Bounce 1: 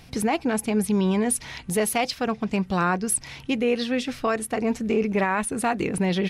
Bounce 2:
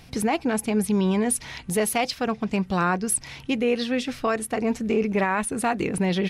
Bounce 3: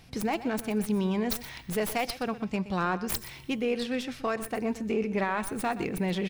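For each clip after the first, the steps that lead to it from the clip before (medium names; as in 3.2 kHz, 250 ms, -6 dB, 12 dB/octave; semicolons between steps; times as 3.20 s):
no audible change
tracing distortion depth 0.11 ms; feedback comb 120 Hz, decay 1.4 s, harmonics odd, mix 50%; delay 123 ms -15 dB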